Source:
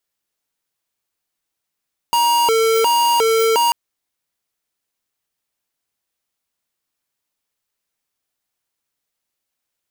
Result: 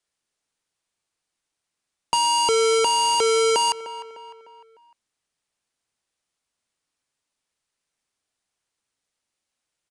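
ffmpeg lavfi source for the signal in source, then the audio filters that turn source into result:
-f lavfi -i "aevalsrc='0.178*(2*lt(mod((697*t+248/1.4*(0.5-abs(mod(1.4*t,1)-0.5))),1),0.5)-1)':duration=1.59:sample_rate=44100"
-filter_complex "[0:a]asplit=2[link_01][link_02];[link_02]adelay=302,lowpass=frequency=3900:poles=1,volume=-18.5dB,asplit=2[link_03][link_04];[link_04]adelay=302,lowpass=frequency=3900:poles=1,volume=0.46,asplit=2[link_05][link_06];[link_06]adelay=302,lowpass=frequency=3900:poles=1,volume=0.46,asplit=2[link_07][link_08];[link_08]adelay=302,lowpass=frequency=3900:poles=1,volume=0.46[link_09];[link_01][link_03][link_05][link_07][link_09]amix=inputs=5:normalize=0,acrossover=split=320|3000[link_10][link_11][link_12];[link_11]acompressor=threshold=-20dB:ratio=6[link_13];[link_10][link_13][link_12]amix=inputs=3:normalize=0,aresample=22050,aresample=44100"

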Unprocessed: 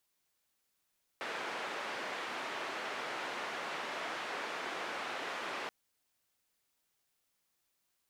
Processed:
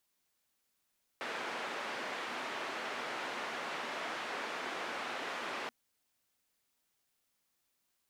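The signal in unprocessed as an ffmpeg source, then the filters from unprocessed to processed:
-f lavfi -i "anoisesrc=color=white:duration=4.48:sample_rate=44100:seed=1,highpass=frequency=350,lowpass=frequency=1900,volume=-24.1dB"
-af "equalizer=frequency=240:width=5.9:gain=4.5"

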